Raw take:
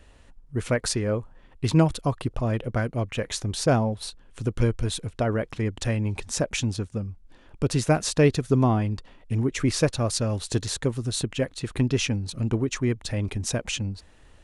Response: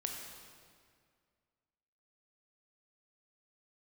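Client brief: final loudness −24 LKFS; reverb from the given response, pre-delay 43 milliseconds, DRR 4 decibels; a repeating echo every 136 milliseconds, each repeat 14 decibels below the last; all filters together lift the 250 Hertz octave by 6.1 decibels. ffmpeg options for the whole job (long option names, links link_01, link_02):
-filter_complex "[0:a]equalizer=frequency=250:width_type=o:gain=7.5,aecho=1:1:136|272:0.2|0.0399,asplit=2[link_01][link_02];[1:a]atrim=start_sample=2205,adelay=43[link_03];[link_02][link_03]afir=irnorm=-1:irlink=0,volume=-4.5dB[link_04];[link_01][link_04]amix=inputs=2:normalize=0,volume=-2.5dB"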